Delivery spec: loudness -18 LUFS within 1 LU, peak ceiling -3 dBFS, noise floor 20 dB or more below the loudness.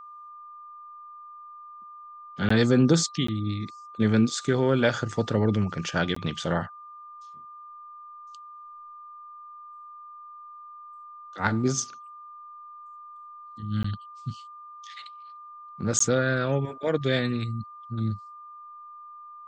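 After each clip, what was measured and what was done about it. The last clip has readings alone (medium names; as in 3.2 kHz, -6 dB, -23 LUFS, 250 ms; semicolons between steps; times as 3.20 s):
dropouts 5; longest dropout 14 ms; steady tone 1.2 kHz; tone level -42 dBFS; loudness -26.0 LUFS; peak level -7.5 dBFS; loudness target -18.0 LUFS
-> interpolate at 2.49/3.27/6.15/13.83/15.99 s, 14 ms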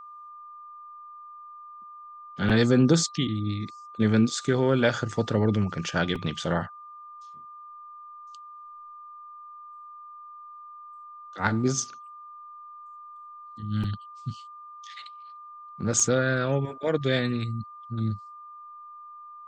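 dropouts 0; steady tone 1.2 kHz; tone level -42 dBFS
-> band-stop 1.2 kHz, Q 30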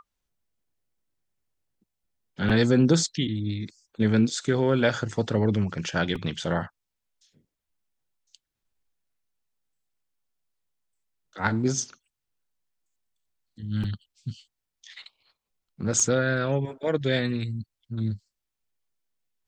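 steady tone not found; loudness -25.5 LUFS; peak level -7.5 dBFS; loudness target -18.0 LUFS
-> trim +7.5 dB; peak limiter -3 dBFS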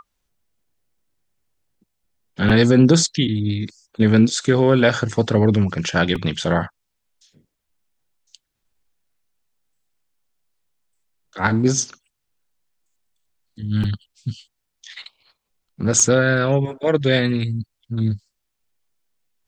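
loudness -18.5 LUFS; peak level -3.0 dBFS; noise floor -77 dBFS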